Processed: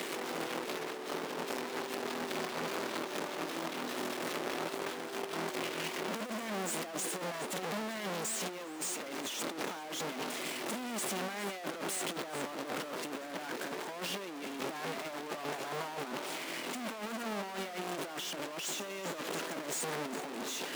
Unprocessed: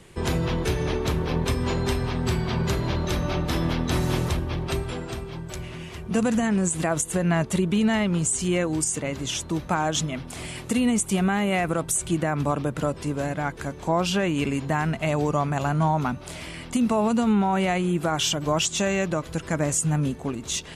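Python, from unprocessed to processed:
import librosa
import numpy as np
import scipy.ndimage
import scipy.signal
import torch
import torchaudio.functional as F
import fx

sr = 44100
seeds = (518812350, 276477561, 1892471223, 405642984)

y = np.sign(x) * np.sqrt(np.mean(np.square(x)))
y = scipy.signal.sosfilt(scipy.signal.butter(4, 260.0, 'highpass', fs=sr, output='sos'), y)
y = fx.high_shelf(y, sr, hz=5300.0, db=-7.5)
y = y + 10.0 ** (-12.0 / 20.0) * np.pad(y, (int(405 * sr / 1000.0), 0))[:len(y)]
y = fx.over_compress(y, sr, threshold_db=-30.0, ratio=-0.5)
y = y * 10.0 ** (-8.0 / 20.0)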